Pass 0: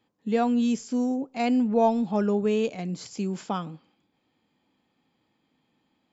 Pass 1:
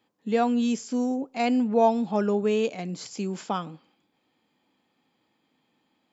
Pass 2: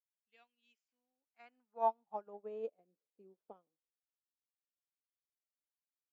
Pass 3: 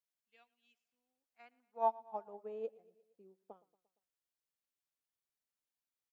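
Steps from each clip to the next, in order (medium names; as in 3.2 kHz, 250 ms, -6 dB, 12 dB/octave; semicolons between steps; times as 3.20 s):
bass shelf 140 Hz -11 dB; trim +2 dB
band-pass sweep 2.7 kHz -> 480 Hz, 0.75–2.83 s; upward expansion 2.5:1, over -48 dBFS; trim -3.5 dB
feedback delay 116 ms, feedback 59%, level -22 dB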